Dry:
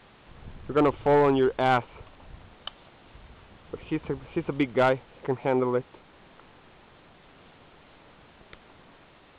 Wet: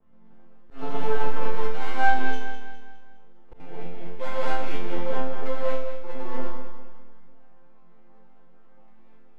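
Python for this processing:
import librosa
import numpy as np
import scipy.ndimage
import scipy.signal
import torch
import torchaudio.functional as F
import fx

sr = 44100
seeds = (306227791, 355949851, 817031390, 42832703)

p1 = fx.block_reorder(x, sr, ms=116.0, group=6)
p2 = fx.env_lowpass(p1, sr, base_hz=760.0, full_db=-19.5)
p3 = scipy.signal.sosfilt(scipy.signal.butter(2, 110.0, 'highpass', fs=sr, output='sos'), p2)
p4 = fx.rev_gated(p3, sr, seeds[0], gate_ms=270, shape='rising', drr_db=-5.5)
p5 = fx.rider(p4, sr, range_db=10, speed_s=2.0)
p6 = p4 + (p5 * librosa.db_to_amplitude(-1.0))
p7 = fx.high_shelf(p6, sr, hz=2800.0, db=6.0)
p8 = np.maximum(p7, 0.0)
p9 = fx.resonator_bank(p8, sr, root=53, chord='major', decay_s=0.63)
p10 = p9 + fx.echo_feedback(p9, sr, ms=205, feedback_pct=42, wet_db=-9.0, dry=0)
p11 = fx.auto_swell(p10, sr, attack_ms=108.0)
y = p11 * librosa.db_to_amplitude(5.5)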